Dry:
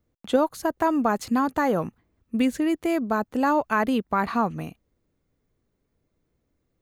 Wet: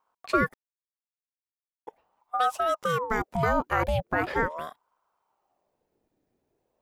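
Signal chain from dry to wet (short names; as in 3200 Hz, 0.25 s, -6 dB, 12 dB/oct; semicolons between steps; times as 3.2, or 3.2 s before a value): 0.54–1.87 mute; 2.66–3.25 bell 6300 Hz +9.5 dB 0.29 oct; ring modulator with a swept carrier 650 Hz, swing 55%, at 0.4 Hz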